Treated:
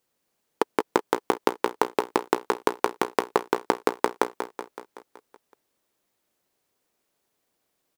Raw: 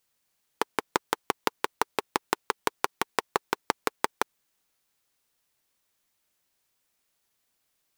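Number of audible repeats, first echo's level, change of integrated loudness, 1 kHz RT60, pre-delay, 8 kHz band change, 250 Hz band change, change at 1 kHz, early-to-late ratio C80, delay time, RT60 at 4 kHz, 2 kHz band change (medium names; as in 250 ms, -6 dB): 6, -9.0 dB, +4.0 dB, no reverb, no reverb, -2.0 dB, +8.5 dB, +3.5 dB, no reverb, 188 ms, no reverb, +0.5 dB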